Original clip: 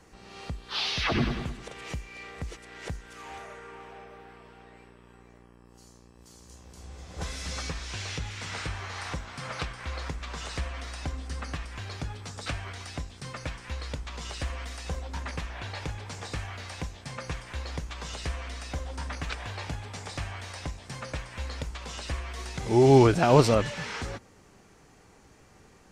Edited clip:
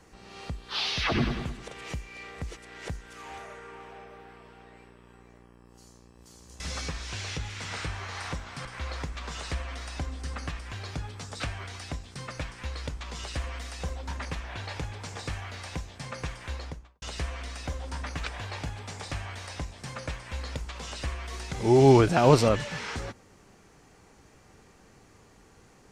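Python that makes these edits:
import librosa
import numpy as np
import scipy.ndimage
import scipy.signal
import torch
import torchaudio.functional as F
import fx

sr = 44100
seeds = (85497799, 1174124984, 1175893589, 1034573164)

y = fx.studio_fade_out(x, sr, start_s=17.56, length_s=0.52)
y = fx.edit(y, sr, fx.cut(start_s=6.6, length_s=0.81),
    fx.cut(start_s=9.46, length_s=0.25), tone=tone)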